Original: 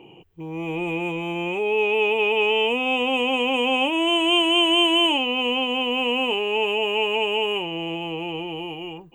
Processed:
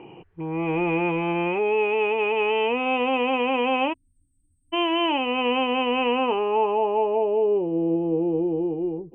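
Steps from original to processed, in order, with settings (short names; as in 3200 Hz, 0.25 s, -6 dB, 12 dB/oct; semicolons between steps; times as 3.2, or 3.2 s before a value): low-pass sweep 1700 Hz -> 420 Hz, 6.04–7.71; vocal rider within 3 dB 0.5 s; spectral delete 3.93–4.73, 290–8000 Hz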